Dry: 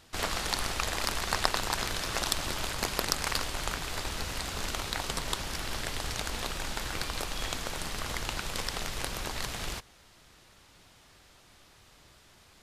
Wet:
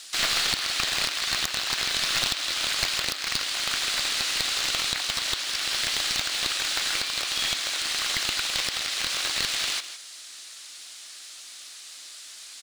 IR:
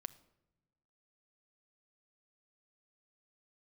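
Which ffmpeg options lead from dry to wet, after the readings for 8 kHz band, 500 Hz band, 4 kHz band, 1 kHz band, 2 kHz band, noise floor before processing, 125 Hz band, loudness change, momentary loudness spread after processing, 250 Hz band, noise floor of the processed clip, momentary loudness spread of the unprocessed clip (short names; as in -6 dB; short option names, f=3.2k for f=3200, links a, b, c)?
+7.5 dB, -3.0 dB, +11.0 dB, 0.0 dB, +7.0 dB, -59 dBFS, -7.0 dB, +8.0 dB, 17 LU, -3.5 dB, -44 dBFS, 5 LU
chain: -filter_complex "[0:a]acrossover=split=4300[a][b];[b]acompressor=threshold=-53dB:ratio=4:attack=1:release=60[c];[a][c]amix=inputs=2:normalize=0,highpass=270,equalizer=f=290:t=q:w=4:g=6,equalizer=f=440:t=q:w=4:g=-4,equalizer=f=920:t=q:w=4:g=-6,equalizer=f=4.1k:t=q:w=4:g=3,lowpass=f=9.7k:w=0.5412,lowpass=f=9.7k:w=1.3066,asplit=2[d][e];[e]aecho=0:1:161:0.224[f];[d][f]amix=inputs=2:normalize=0,aeval=exprs='0.473*sin(PI/2*2.82*val(0)/0.473)':c=same,acrusher=bits=8:mode=log:mix=0:aa=0.000001,aderivative,alimiter=limit=-15dB:level=0:latency=1:release=482,aeval=exprs='clip(val(0),-1,0.0266)':c=same,volume=8.5dB"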